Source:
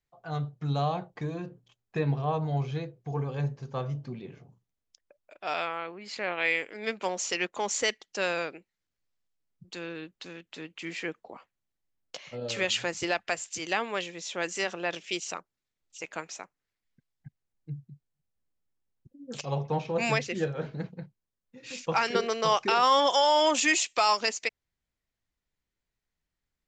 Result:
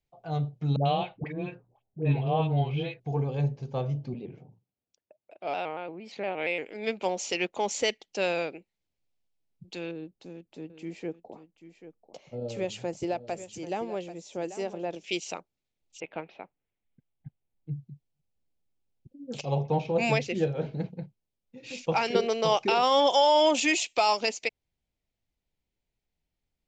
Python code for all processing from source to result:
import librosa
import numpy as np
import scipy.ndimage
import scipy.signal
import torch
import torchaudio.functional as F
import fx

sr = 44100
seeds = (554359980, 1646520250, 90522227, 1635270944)

y = fx.chain(x, sr, fx.auto_swell(attack_ms=130.0),
    fx.dispersion(late='highs', ms=95.0, hz=660.0),
    fx.envelope_lowpass(base_hz=620.0, top_hz=3000.0, q=3.1, full_db=-32.0, direction='up'), at=(0.76, 3.0))
y = fx.chain(y, sr, fx.highpass(hz=100.0, slope=12),
    fx.high_shelf(hz=2200.0, db=-9.5),
    fx.vibrato_shape(shape='square', rate_hz=4.3, depth_cents=100.0), at=(4.14, 6.66))
y = fx.chain(y, sr, fx.peak_eq(hz=2900.0, db=-14.5, octaves=2.5),
    fx.echo_single(ms=788, db=-13.0), at=(9.91, 15.04))
y = fx.chain(y, sr, fx.block_float(bits=7),
    fx.steep_lowpass(hz=3700.0, slope=36),
    fx.high_shelf(hz=2700.0, db=-6.5), at=(16.0, 17.71))
y = fx.lowpass(y, sr, hz=3400.0, slope=6)
y = fx.band_shelf(y, sr, hz=1400.0, db=-8.5, octaves=1.1)
y = y * 10.0 ** (3.0 / 20.0)